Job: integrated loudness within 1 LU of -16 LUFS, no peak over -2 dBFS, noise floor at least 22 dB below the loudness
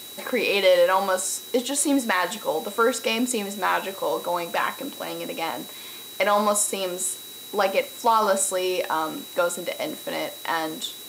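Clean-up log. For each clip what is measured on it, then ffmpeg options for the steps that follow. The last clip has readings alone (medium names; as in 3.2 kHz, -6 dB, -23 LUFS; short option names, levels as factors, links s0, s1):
steady tone 3.9 kHz; tone level -41 dBFS; noise floor -40 dBFS; noise floor target -46 dBFS; loudness -24.0 LUFS; peak level -9.0 dBFS; loudness target -16.0 LUFS
-> -af "bandreject=f=3900:w=30"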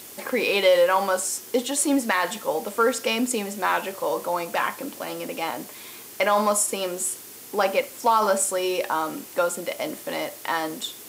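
steady tone not found; noise floor -42 dBFS; noise floor target -46 dBFS
-> -af "afftdn=nr=6:nf=-42"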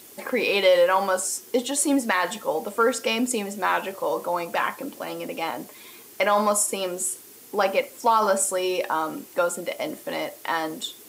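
noise floor -47 dBFS; loudness -24.0 LUFS; peak level -9.0 dBFS; loudness target -16.0 LUFS
-> -af "volume=2.51,alimiter=limit=0.794:level=0:latency=1"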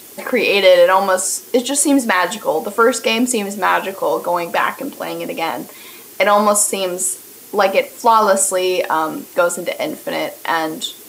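loudness -16.5 LUFS; peak level -2.0 dBFS; noise floor -39 dBFS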